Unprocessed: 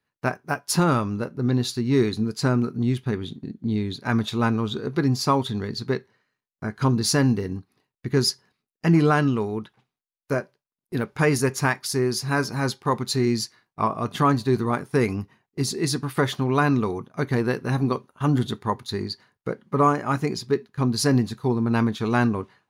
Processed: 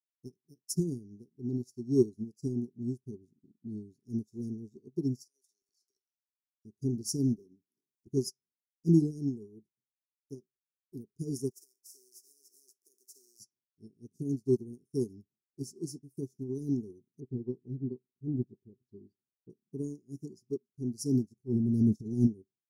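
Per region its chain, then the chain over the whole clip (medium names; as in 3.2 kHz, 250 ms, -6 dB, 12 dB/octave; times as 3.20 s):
5.23–6.65 s: high-pass 1.1 kHz 24 dB/octave + transient shaper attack -4 dB, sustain +11 dB
7.36–8.07 s: high-pass 180 Hz + upward compressor, threshold -41 dBFS + hard clipper -25 dBFS
11.50–13.39 s: spectral contrast reduction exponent 0.4 + high-pass 420 Hz 24 dB/octave + compression 10:1, threshold -25 dBFS
17.20–19.50 s: distance through air 450 m + doubling 16 ms -11 dB + careless resampling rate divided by 2×, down none, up filtered
21.36–22.27 s: transient shaper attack -9 dB, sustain +8 dB + tone controls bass +6 dB, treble -2 dB
whole clip: Chebyshev band-stop 400–5400 Hz, order 5; bass shelf 190 Hz -6 dB; upward expansion 2.5:1, over -38 dBFS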